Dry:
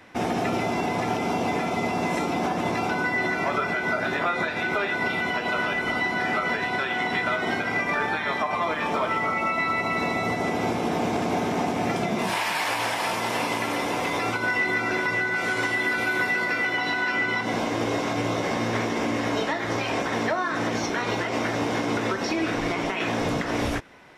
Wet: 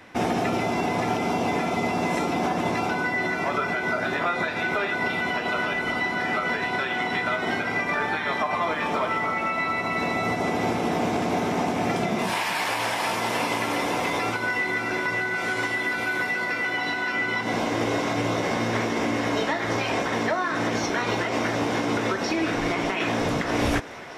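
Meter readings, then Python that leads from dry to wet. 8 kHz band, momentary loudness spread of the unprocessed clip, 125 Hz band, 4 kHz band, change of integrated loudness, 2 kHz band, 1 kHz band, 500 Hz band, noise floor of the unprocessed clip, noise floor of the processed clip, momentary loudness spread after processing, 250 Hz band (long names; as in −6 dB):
+0.5 dB, 3 LU, +0.5 dB, +0.5 dB, 0.0 dB, −0.5 dB, +0.5 dB, +0.5 dB, −29 dBFS, −29 dBFS, 1 LU, +0.5 dB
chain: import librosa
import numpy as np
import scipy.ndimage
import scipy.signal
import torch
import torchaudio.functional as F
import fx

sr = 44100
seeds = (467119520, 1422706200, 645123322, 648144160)

y = fx.rider(x, sr, range_db=10, speed_s=0.5)
y = fx.echo_thinned(y, sr, ms=623, feedback_pct=81, hz=210.0, wet_db=-18)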